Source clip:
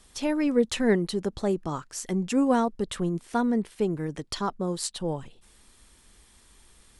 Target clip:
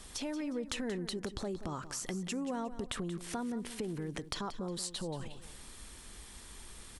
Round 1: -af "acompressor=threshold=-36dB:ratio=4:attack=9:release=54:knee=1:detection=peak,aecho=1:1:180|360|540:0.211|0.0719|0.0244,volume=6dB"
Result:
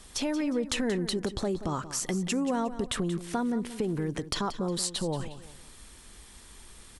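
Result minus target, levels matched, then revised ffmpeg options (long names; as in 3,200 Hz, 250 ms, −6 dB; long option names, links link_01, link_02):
downward compressor: peak gain reduction −8 dB
-af "acompressor=threshold=-47dB:ratio=4:attack=9:release=54:knee=1:detection=peak,aecho=1:1:180|360|540:0.211|0.0719|0.0244,volume=6dB"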